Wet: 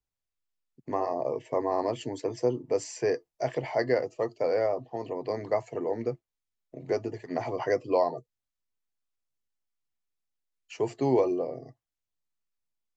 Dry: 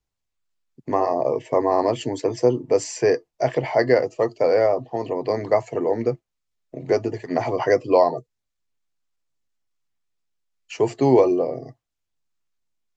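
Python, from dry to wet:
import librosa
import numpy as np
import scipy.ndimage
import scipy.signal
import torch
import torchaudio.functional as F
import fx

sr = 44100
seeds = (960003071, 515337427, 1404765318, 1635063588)

y = fx.high_shelf(x, sr, hz=6600.0, db=5.5, at=(3.15, 3.84))
y = F.gain(torch.from_numpy(y), -8.5).numpy()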